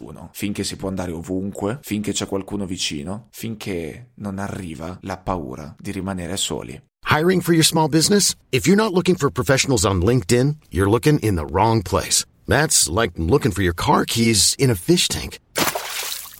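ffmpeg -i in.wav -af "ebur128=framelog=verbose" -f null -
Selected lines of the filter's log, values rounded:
Integrated loudness:
  I:         -19.3 LUFS
  Threshold: -29.8 LUFS
Loudness range:
  LRA:        10.6 LU
  Threshold: -39.6 LUFS
  LRA low:   -27.7 LUFS
  LRA high:  -17.1 LUFS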